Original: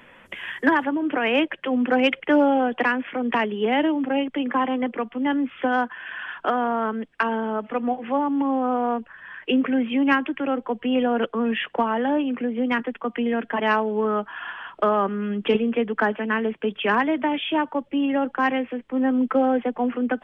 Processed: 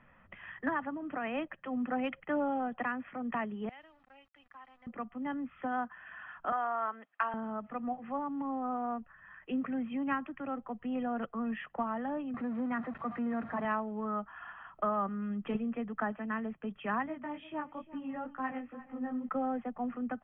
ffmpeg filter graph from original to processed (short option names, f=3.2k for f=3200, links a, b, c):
-filter_complex "[0:a]asettb=1/sr,asplit=3[a][b][c];[a]atrim=end=3.694[d];[b]atrim=start=3.69:end=4.87,asetpts=PTS-STARTPTS,afade=t=in:d=0.004:c=qsin,afade=t=out:st=1.176:d=0.004:c=qsin,highpass=200,aderivative,aeval=exprs='val(0)*gte(abs(val(0)),0.00316)':c=same[e];[c]atrim=start=4.866[f];[d][e]acrossfade=d=0.004:c1=hsin:c2=qsin[g];[g][f]acrossfade=d=0.004:c1=qsin:c2=hsin,asettb=1/sr,asplit=3[h][i][j];[h]atrim=end=6.524[k];[i]atrim=start=6.52:end=7.34,asetpts=PTS-STARTPTS,afade=t=in:d=0.004:c=qsin,afade=t=out:st=0.816:d=0.004:c=qsin,highpass=690,acontrast=21[l];[j]atrim=start=7.336[m];[k][l]acrossfade=d=0.004:c1=hsin:c2=qsin[n];[n][m]acrossfade=d=0.004:c1=qsin:c2=hsin,asettb=1/sr,asplit=3[o][p][q];[o]atrim=end=12.344[r];[p]atrim=start=12.34:end=13.65,asetpts=PTS-STARTPTS,afade=t=in:d=0.004:c=qsin,afade=t=out:st=1.306:d=0.004:c=qsin,aeval=exprs='val(0)+0.5*0.0447*sgn(val(0))':c=same,highpass=110,lowpass=2.1k[s];[q]atrim=start=13.646[t];[r][s]acrossfade=d=0.004:c1=hsin:c2=qsin[u];[u][t]acrossfade=d=0.004:c1=qsin:c2=hsin,asettb=1/sr,asplit=3[v][w][x];[v]atrim=end=17.064[y];[w]atrim=start=17.06:end=19.29,asetpts=PTS-STARTPTS,afade=t=in:d=0.004:c=qsin,afade=t=out:st=2.226:d=0.004:c=qsin,flanger=delay=15:depth=5.6:speed=2.2,bandreject=f=680:w=10,aecho=1:1:348|696:0.15|0.0359,atrim=end_sample=98343[z];[x]atrim=start=19.286[aa];[y][z]acrossfade=d=0.004:c1=hsin:c2=qsin[ab];[ab][aa]acrossfade=d=0.004:c1=qsin:c2=hsin,lowpass=1.1k,equalizer=f=470:w=1.1:g=-14.5,aecho=1:1:1.6:0.37,volume=-4.5dB"